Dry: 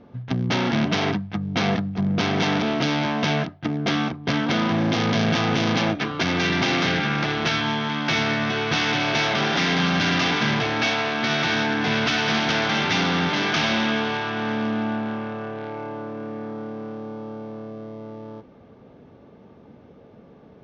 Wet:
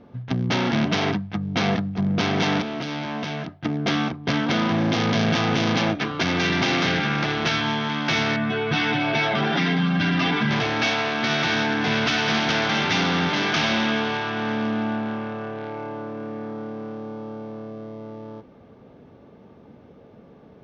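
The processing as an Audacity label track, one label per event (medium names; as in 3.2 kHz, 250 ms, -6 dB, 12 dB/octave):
2.610000	3.650000	compression, threshold -25 dBFS
8.360000	10.510000	spectral contrast enhancement exponent 1.6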